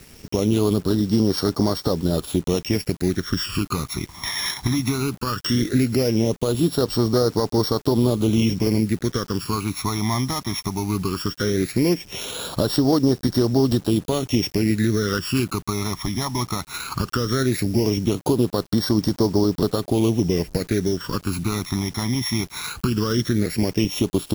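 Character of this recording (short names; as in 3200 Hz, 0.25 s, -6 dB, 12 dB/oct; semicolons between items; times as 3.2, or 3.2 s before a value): a buzz of ramps at a fixed pitch in blocks of 8 samples; phasing stages 12, 0.17 Hz, lowest notch 470–2500 Hz; a quantiser's noise floor 8-bit, dither none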